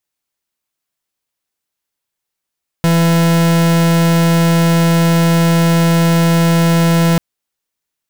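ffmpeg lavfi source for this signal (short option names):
-f lavfi -i "aevalsrc='0.282*(2*lt(mod(167*t,1),0.43)-1)':d=4.34:s=44100"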